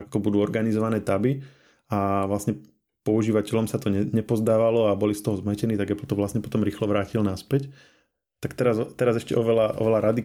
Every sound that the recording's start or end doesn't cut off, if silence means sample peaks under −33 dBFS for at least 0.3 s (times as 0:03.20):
0:01.91–0:02.57
0:03.06–0:07.67